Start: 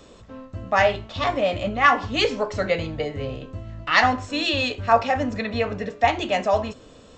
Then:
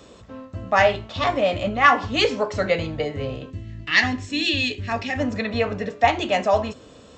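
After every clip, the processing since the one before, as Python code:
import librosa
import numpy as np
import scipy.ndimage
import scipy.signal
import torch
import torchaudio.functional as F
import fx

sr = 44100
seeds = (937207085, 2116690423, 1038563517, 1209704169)

y = fx.spec_box(x, sr, start_s=3.5, length_s=1.68, low_hz=450.0, high_hz=1600.0, gain_db=-12)
y = scipy.signal.sosfilt(scipy.signal.butter(2, 53.0, 'highpass', fs=sr, output='sos'), y)
y = F.gain(torch.from_numpy(y), 1.5).numpy()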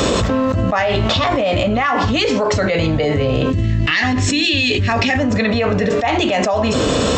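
y = fx.env_flatten(x, sr, amount_pct=100)
y = F.gain(torch.from_numpy(y), -5.5).numpy()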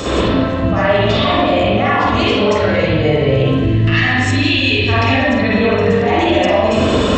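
y = fx.room_flutter(x, sr, wall_m=8.3, rt60_s=0.29)
y = fx.rev_spring(y, sr, rt60_s=1.3, pass_ms=(45, 60), chirp_ms=20, drr_db=-9.5)
y = F.gain(torch.from_numpy(y), -7.5).numpy()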